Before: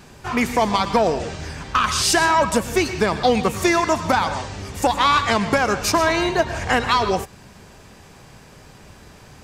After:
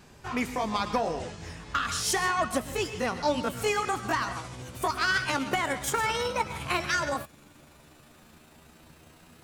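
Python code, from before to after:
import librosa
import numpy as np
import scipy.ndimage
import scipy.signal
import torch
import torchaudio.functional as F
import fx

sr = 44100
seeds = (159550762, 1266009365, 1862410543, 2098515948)

y = fx.pitch_glide(x, sr, semitones=8.5, runs='starting unshifted')
y = F.gain(torch.from_numpy(y), -8.5).numpy()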